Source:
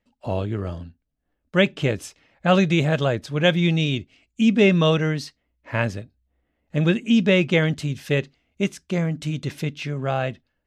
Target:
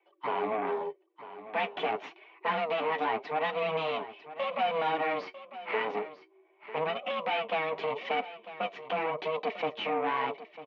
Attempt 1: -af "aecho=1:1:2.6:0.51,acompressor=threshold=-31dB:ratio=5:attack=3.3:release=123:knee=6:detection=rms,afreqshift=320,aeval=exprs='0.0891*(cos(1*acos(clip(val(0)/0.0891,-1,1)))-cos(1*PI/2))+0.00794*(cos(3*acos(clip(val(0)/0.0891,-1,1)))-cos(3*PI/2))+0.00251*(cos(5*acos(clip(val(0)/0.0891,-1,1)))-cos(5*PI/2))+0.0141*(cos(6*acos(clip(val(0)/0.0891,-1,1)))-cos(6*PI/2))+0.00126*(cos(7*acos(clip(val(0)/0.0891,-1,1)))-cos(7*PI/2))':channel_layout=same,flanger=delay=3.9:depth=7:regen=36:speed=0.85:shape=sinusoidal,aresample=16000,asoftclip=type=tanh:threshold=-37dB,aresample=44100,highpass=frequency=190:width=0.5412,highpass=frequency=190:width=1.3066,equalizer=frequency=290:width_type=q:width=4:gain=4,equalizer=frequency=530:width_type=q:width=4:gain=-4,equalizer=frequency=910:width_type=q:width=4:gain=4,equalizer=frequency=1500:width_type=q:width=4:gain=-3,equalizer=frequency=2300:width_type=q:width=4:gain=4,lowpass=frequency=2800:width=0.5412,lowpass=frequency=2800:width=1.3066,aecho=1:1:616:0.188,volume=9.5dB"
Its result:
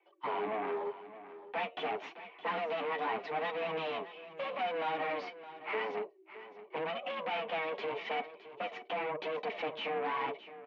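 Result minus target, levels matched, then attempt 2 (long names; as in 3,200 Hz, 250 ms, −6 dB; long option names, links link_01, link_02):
soft clipping: distortion +12 dB; echo 332 ms early
-af "aecho=1:1:2.6:0.51,acompressor=threshold=-31dB:ratio=5:attack=3.3:release=123:knee=6:detection=rms,afreqshift=320,aeval=exprs='0.0891*(cos(1*acos(clip(val(0)/0.0891,-1,1)))-cos(1*PI/2))+0.00794*(cos(3*acos(clip(val(0)/0.0891,-1,1)))-cos(3*PI/2))+0.00251*(cos(5*acos(clip(val(0)/0.0891,-1,1)))-cos(5*PI/2))+0.0141*(cos(6*acos(clip(val(0)/0.0891,-1,1)))-cos(6*PI/2))+0.00126*(cos(7*acos(clip(val(0)/0.0891,-1,1)))-cos(7*PI/2))':channel_layout=same,flanger=delay=3.9:depth=7:regen=36:speed=0.85:shape=sinusoidal,aresample=16000,asoftclip=type=tanh:threshold=-26.5dB,aresample=44100,highpass=frequency=190:width=0.5412,highpass=frequency=190:width=1.3066,equalizer=frequency=290:width_type=q:width=4:gain=4,equalizer=frequency=530:width_type=q:width=4:gain=-4,equalizer=frequency=910:width_type=q:width=4:gain=4,equalizer=frequency=1500:width_type=q:width=4:gain=-3,equalizer=frequency=2300:width_type=q:width=4:gain=4,lowpass=frequency=2800:width=0.5412,lowpass=frequency=2800:width=1.3066,aecho=1:1:948:0.188,volume=9.5dB"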